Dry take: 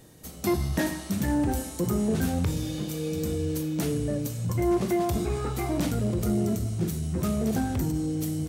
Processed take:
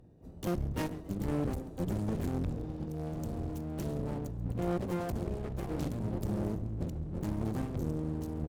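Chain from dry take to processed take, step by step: Wiener smoothing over 41 samples; harmoniser -12 st -3 dB, +7 st -7 dB; on a send: frequency-shifting echo 0.136 s, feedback 36%, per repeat +100 Hz, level -21.5 dB; on the sum: one-sided clip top -34.5 dBFS, bottom -16 dBFS; gain -6 dB

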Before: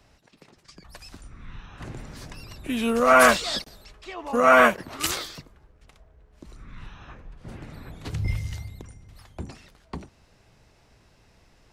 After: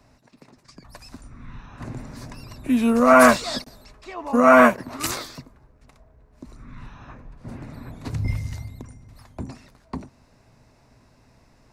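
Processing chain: thirty-one-band EQ 125 Hz +7 dB, 250 Hz +10 dB, 630 Hz +4 dB, 1000 Hz +5 dB, 3150 Hz -8 dB

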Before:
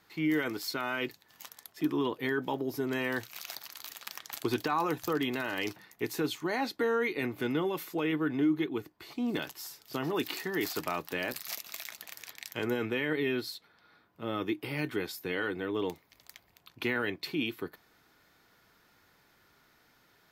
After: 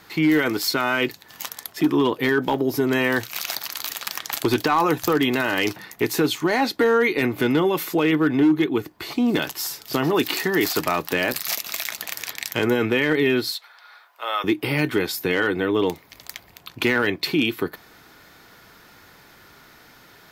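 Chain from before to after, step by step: 13.52–14.44 HPF 710 Hz 24 dB/oct; in parallel at +2 dB: compressor 8:1, threshold -38 dBFS, peak gain reduction 14.5 dB; on the sum: hard clip -20.5 dBFS, distortion -24 dB; gain +8.5 dB

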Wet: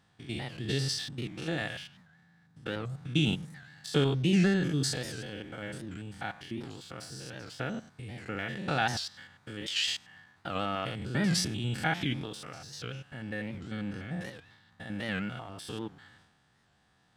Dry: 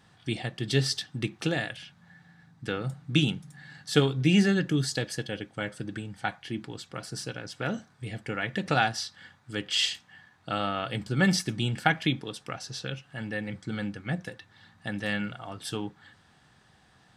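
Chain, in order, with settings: stepped spectrum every 0.1 s; in parallel at -4 dB: crossover distortion -50.5 dBFS; on the sum: transient shaper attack +2 dB, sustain +8 dB; record warp 78 rpm, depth 160 cents; gain -7 dB

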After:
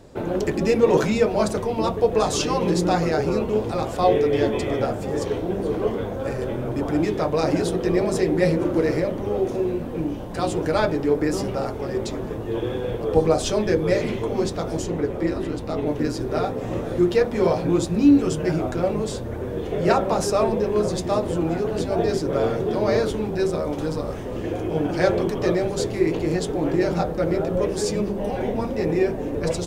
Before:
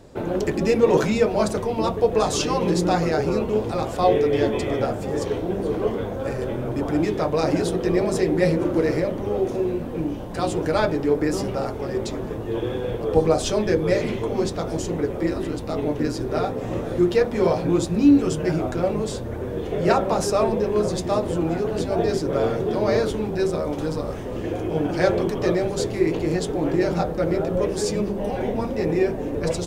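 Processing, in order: 14.84–15.87 high shelf 6400 Hz -5.5 dB

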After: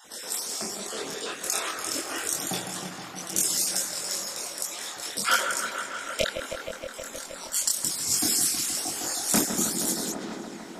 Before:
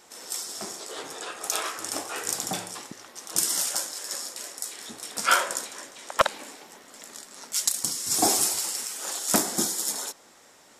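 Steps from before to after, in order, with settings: random spectral dropouts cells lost 24%; dark delay 0.157 s, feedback 76%, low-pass 2600 Hz, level -8.5 dB; chorus voices 4, 1.1 Hz, delay 24 ms, depth 3 ms; in parallel at +1.5 dB: compressor, threshold -38 dBFS, peak gain reduction 18 dB; 8.18–8.77 on the sum: band shelf 600 Hz -11.5 dB; short-mantissa float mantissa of 6-bit; dynamic EQ 940 Hz, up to -5 dB, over -43 dBFS, Q 0.95; gain +2 dB

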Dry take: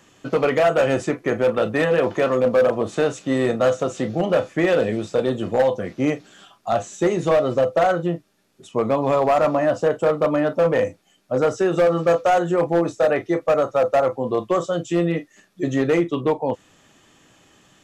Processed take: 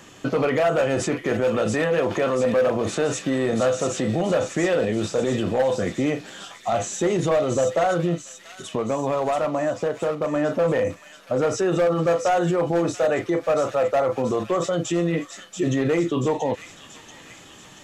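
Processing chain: 8.14–10.36 compressor 6:1, threshold -29 dBFS, peak gain reduction 13.5 dB; limiter -22.5 dBFS, peak gain reduction 11 dB; thin delay 0.683 s, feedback 58%, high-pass 2700 Hz, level -4.5 dB; gain +7.5 dB

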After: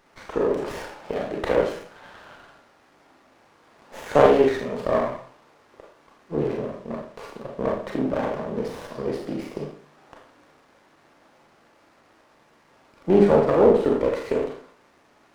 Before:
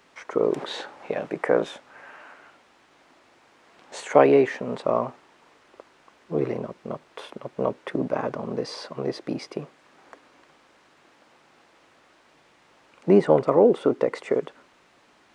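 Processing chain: Schroeder reverb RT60 0.52 s, combs from 27 ms, DRR -1 dB; running maximum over 9 samples; gain -2 dB

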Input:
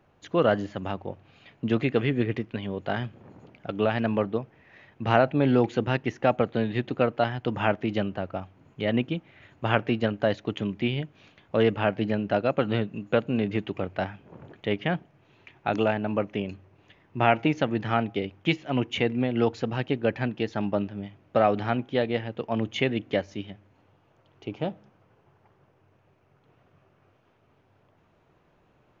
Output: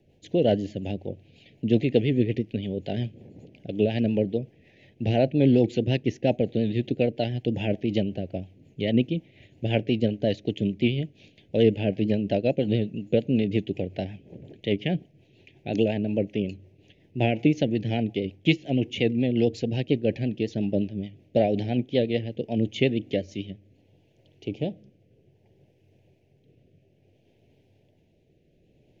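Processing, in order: vibrato 8.8 Hz 50 cents; rotary speaker horn 5.5 Hz, later 0.6 Hz, at 22.81; Butterworth band-stop 1200 Hz, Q 0.64; gain +4.5 dB

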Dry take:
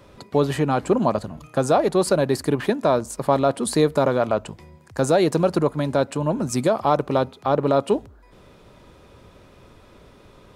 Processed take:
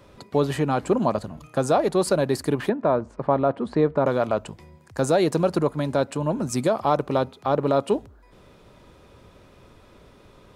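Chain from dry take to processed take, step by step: 2.69–4.06 LPF 1800 Hz 12 dB/oct; gain -2 dB

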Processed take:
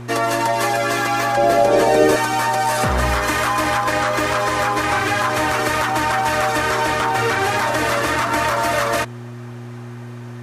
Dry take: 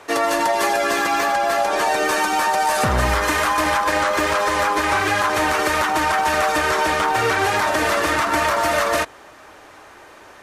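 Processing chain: 1.37–2.16 resonant low shelf 700 Hz +9 dB, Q 1.5; buzz 120 Hz, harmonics 3, -33 dBFS -6 dB/oct

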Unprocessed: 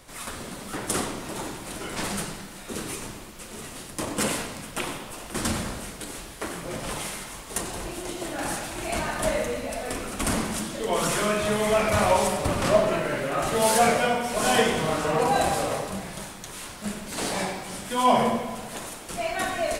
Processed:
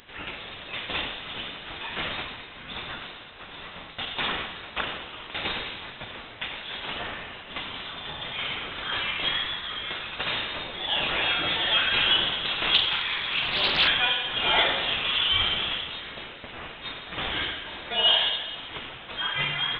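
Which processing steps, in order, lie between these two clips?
tilt +3.5 dB/oct; in parallel at -8 dB: wrapped overs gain 11 dB; on the sum: inverted band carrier 3900 Hz; 12.74–13.88 Doppler distortion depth 0.43 ms; gain -3 dB

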